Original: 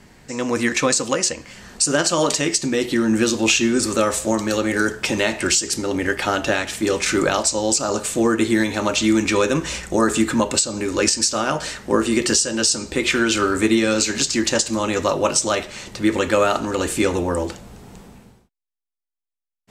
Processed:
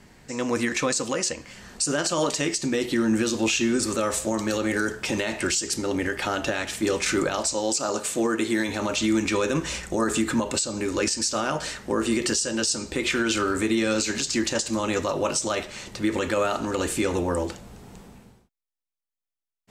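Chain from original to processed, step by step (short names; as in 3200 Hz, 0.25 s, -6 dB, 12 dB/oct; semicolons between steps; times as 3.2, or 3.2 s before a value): 7.54–8.69 HPF 220 Hz 6 dB/oct; limiter -10.5 dBFS, peak gain reduction 7 dB; gain -3.5 dB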